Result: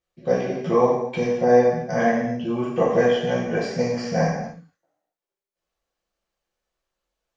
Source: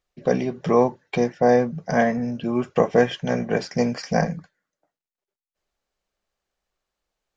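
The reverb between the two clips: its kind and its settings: non-linear reverb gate 0.32 s falling, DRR -7.5 dB; gain -8.5 dB

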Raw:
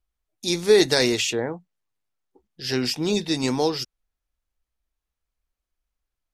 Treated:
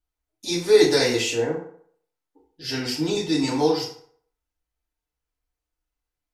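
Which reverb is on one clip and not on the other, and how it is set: FDN reverb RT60 0.59 s, low-frequency decay 0.8×, high-frequency decay 0.65×, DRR -6.5 dB; gain -7.5 dB

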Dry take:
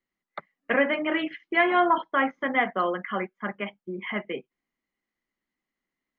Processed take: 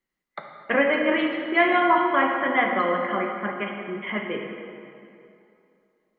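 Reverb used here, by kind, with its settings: plate-style reverb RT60 2.7 s, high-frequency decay 0.7×, DRR 1.5 dB; gain +1 dB

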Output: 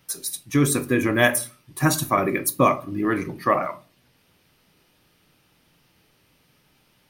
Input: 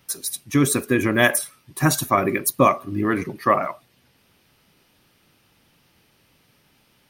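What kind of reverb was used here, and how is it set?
shoebox room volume 160 m³, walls furnished, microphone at 0.53 m; gain -2 dB

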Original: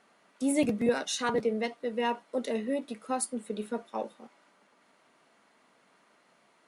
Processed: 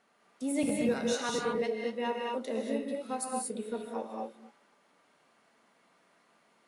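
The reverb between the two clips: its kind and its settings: non-linear reverb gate 0.26 s rising, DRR -0.5 dB; gain -5.5 dB

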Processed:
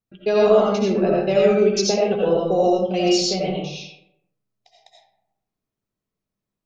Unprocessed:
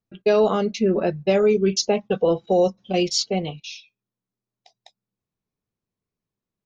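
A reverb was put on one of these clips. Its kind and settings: digital reverb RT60 0.79 s, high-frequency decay 0.5×, pre-delay 45 ms, DRR -4 dB; gain -3 dB

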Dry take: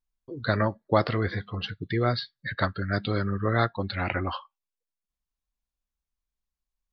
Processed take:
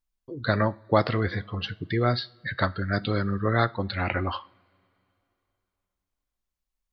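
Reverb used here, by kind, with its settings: two-slope reverb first 0.41 s, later 3.1 s, from -22 dB, DRR 17.5 dB; gain +1 dB

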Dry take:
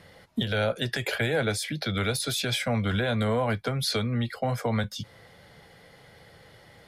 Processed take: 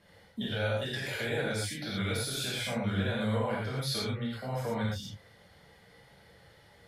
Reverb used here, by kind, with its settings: non-linear reverb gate 0.15 s flat, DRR -7 dB; gain -13 dB

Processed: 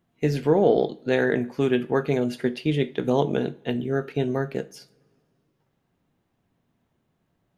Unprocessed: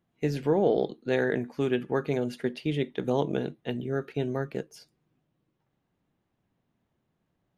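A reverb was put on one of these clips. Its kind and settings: two-slope reverb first 0.32 s, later 2.5 s, from -27 dB, DRR 11.5 dB; gain +4.5 dB

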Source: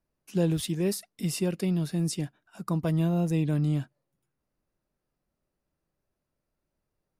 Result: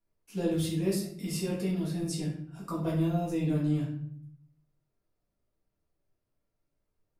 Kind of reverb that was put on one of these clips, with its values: shoebox room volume 100 m³, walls mixed, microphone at 1.8 m; gain -10 dB

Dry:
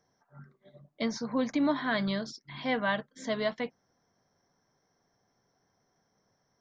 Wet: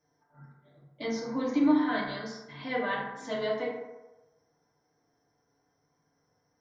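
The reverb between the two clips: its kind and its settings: FDN reverb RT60 1.1 s, low-frequency decay 0.75×, high-frequency decay 0.4×, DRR -7 dB; gain -8.5 dB

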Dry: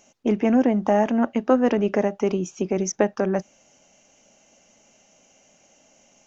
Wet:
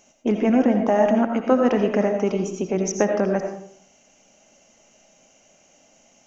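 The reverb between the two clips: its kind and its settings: digital reverb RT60 0.61 s, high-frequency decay 0.55×, pre-delay 45 ms, DRR 4 dB

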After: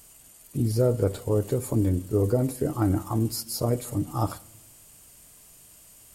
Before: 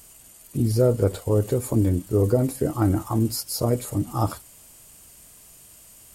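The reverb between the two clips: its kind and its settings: shoebox room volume 2300 m³, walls furnished, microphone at 0.36 m; gain -3 dB

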